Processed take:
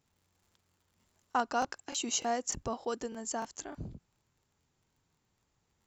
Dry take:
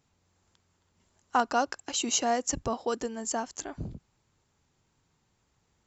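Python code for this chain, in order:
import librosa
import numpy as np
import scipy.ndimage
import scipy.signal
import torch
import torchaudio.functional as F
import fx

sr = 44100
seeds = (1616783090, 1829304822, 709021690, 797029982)

y = fx.dmg_crackle(x, sr, seeds[0], per_s=fx.steps((0.0, 190.0), (1.36, 17.0)), level_db=-56.0)
y = fx.buffer_crackle(y, sr, first_s=0.7, period_s=0.3, block=1024, kind='repeat')
y = y * librosa.db_to_amplitude(-5.0)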